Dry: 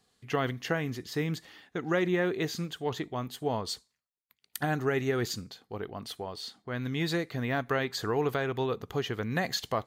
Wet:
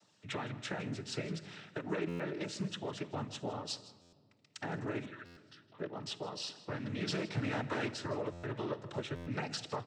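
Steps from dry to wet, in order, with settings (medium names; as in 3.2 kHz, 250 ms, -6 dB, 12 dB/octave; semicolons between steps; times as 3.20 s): 7.07–7.91 s: waveshaping leveller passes 3; compression 4:1, threshold -39 dBFS, peak gain reduction 15 dB; 5.05–5.78 s: two resonant band-passes 2.1 kHz, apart 0.71 oct; noise-vocoded speech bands 12; feedback delay 160 ms, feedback 27%, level -18 dB; simulated room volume 3600 m³, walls mixed, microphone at 0.41 m; buffer glitch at 2.08/4.01/5.25/8.32/9.15 s, samples 512, times 9; loudspeaker Doppler distortion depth 0.21 ms; trim +2 dB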